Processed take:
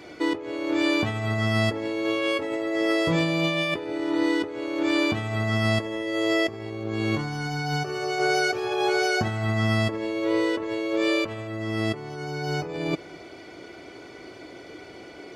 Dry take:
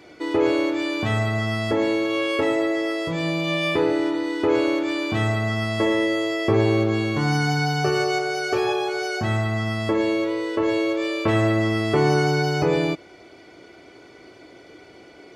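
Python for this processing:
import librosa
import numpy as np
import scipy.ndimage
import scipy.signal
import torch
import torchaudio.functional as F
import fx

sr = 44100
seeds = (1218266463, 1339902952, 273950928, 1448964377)

p1 = fx.over_compress(x, sr, threshold_db=-25.0, ratio=-0.5)
y = p1 + fx.echo_single(p1, sr, ms=229, db=-22.5, dry=0)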